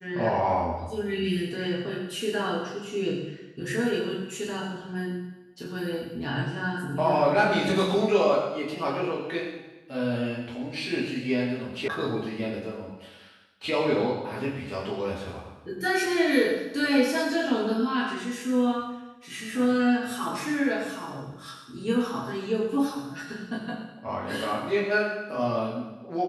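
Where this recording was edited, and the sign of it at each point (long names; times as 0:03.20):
0:11.88: cut off before it has died away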